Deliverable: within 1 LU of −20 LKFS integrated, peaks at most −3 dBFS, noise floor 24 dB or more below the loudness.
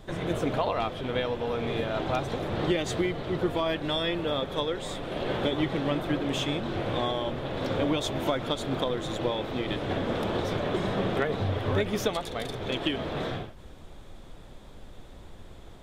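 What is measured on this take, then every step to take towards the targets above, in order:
background noise floor −47 dBFS; target noise floor −54 dBFS; integrated loudness −29.5 LKFS; sample peak −13.5 dBFS; target loudness −20.0 LKFS
→ noise reduction from a noise print 7 dB
level +9.5 dB

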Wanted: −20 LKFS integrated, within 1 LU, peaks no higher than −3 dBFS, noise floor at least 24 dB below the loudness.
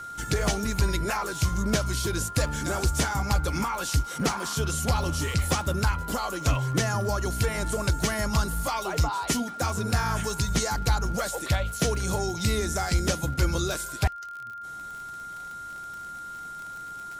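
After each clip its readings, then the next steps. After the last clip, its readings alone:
crackle rate 49 per second; interfering tone 1,400 Hz; level of the tone −36 dBFS; integrated loudness −27.5 LKFS; sample peak −12.5 dBFS; target loudness −20.0 LKFS
→ click removal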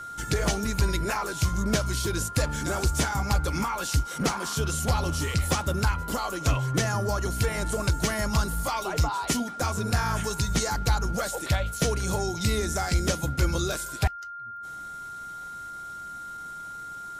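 crackle rate 0.058 per second; interfering tone 1,400 Hz; level of the tone −36 dBFS
→ notch filter 1,400 Hz, Q 30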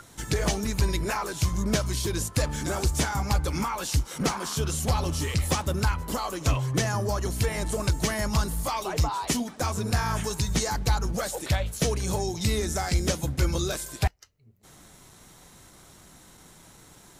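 interfering tone none found; integrated loudness −27.5 LKFS; sample peak −13.0 dBFS; target loudness −20.0 LKFS
→ level +7.5 dB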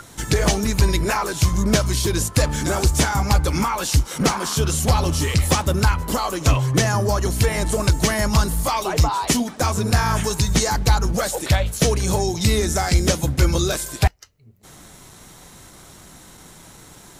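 integrated loudness −20.0 LKFS; sample peak −5.5 dBFS; background noise floor −45 dBFS

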